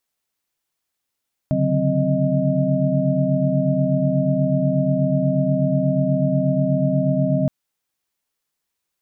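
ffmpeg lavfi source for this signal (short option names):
-f lavfi -i "aevalsrc='0.075*(sin(2*PI*138.59*t)+sin(2*PI*146.83*t)+sin(2*PI*185*t)+sin(2*PI*261.63*t)+sin(2*PI*622.25*t))':d=5.97:s=44100"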